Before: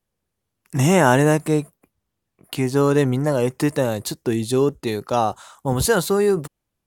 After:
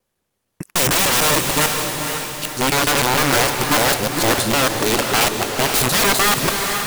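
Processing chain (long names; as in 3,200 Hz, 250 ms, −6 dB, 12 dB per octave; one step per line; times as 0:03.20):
reversed piece by piece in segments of 151 ms
low-shelf EQ 190 Hz −9.5 dB
wrap-around overflow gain 19 dB
feedback delay with all-pass diffusion 500 ms, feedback 48%, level −5 dB
level +7.5 dB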